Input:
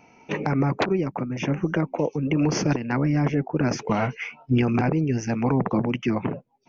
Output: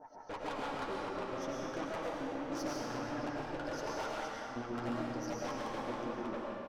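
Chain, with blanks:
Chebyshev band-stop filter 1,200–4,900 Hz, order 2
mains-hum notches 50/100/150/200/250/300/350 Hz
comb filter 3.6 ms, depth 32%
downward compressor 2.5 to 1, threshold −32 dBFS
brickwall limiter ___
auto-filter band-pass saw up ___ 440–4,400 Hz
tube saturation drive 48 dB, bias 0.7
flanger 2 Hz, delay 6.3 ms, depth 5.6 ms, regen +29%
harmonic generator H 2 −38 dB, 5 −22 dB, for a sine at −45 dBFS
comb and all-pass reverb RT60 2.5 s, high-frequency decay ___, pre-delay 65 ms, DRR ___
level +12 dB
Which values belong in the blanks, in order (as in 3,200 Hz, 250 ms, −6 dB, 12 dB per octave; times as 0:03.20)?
−23 dBFS, 6.8 Hz, 0.9×, −4 dB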